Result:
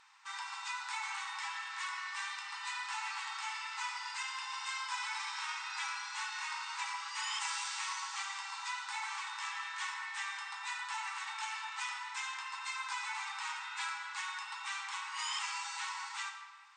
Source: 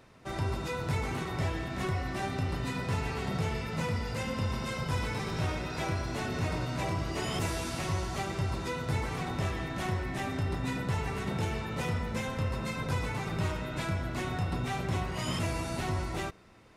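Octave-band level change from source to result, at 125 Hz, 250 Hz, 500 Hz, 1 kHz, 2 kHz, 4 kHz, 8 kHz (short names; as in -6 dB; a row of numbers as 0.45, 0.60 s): under -40 dB, under -40 dB, under -40 dB, -2.5 dB, 0.0 dB, +1.0 dB, +1.5 dB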